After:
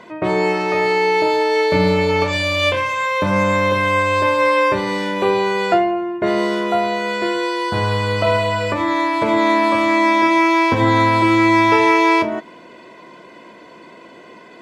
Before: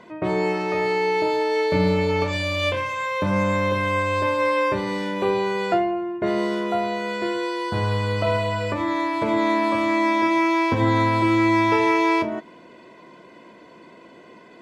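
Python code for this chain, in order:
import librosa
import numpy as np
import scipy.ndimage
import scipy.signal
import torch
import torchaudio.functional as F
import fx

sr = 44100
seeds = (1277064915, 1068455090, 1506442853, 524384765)

y = fx.low_shelf(x, sr, hz=380.0, db=-5.0)
y = y * librosa.db_to_amplitude(7.0)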